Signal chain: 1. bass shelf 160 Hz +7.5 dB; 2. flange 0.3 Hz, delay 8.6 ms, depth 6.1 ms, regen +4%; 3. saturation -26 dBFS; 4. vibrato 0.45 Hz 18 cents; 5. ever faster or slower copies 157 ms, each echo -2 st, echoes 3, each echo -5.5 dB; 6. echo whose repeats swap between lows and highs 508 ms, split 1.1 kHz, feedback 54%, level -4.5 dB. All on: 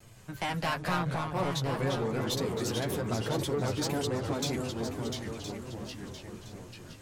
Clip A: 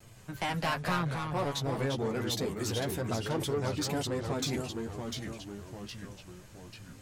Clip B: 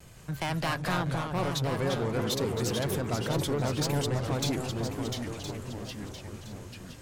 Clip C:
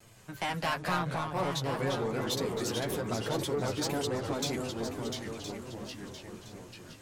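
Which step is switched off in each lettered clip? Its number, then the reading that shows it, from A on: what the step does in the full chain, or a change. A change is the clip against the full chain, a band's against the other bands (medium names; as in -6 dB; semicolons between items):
6, echo-to-direct -7.0 dB to none; 2, 125 Hz band +2.0 dB; 1, 125 Hz band -3.5 dB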